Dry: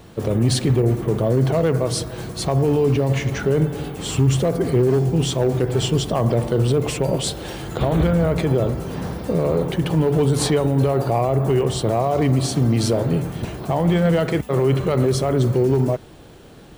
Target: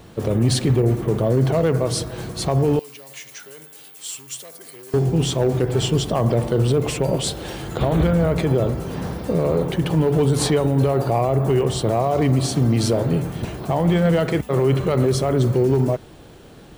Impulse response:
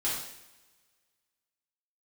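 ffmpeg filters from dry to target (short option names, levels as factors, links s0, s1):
-filter_complex "[0:a]asettb=1/sr,asplit=3[s0][s1][s2];[s0]atrim=end=2.794[s3];[s1]atrim=start=2.79:end=4.94,asetpts=PTS-STARTPTS,afade=t=in:d=0.004:c=qsin,afade=t=out:st=2.146:d=0.004:c=qsin,aderivative[s4];[s2]atrim=start=4.936[s5];[s3][s4]acrossfade=d=0.004:c1=hsin:c2=qsin[s6];[s6][s5]acrossfade=d=0.004:c1=qsin:c2=hsin"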